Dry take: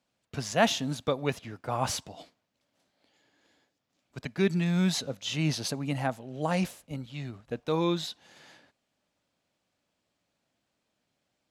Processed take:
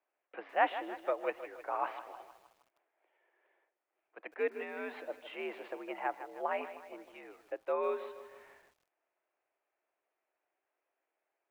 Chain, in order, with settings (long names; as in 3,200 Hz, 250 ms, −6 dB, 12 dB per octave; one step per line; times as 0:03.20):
single-sideband voice off tune +68 Hz 330–2,400 Hz
feedback echo at a low word length 156 ms, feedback 55%, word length 9 bits, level −12 dB
level −4 dB